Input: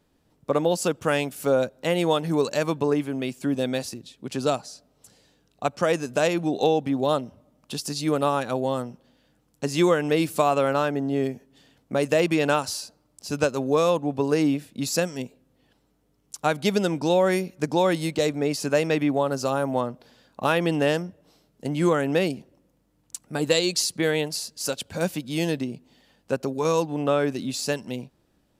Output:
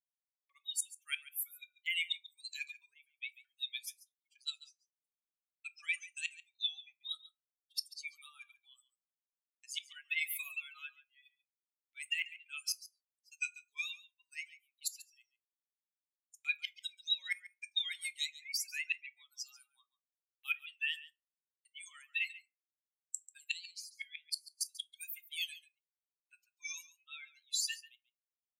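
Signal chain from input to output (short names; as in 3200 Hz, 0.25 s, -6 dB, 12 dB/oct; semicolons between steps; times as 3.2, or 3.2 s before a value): per-bin expansion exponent 3; gate -53 dBFS, range -18 dB; Chebyshev high-pass 2200 Hz, order 5; flipped gate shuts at -32 dBFS, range -31 dB; in parallel at +2 dB: limiter -38 dBFS, peak gain reduction 10 dB; on the sum: vibrato 3.4 Hz 68 cents; echo 0.14 s -17 dB; on a send at -12 dB: reverb RT60 0.30 s, pre-delay 5 ms; on the sum: gain +5.5 dB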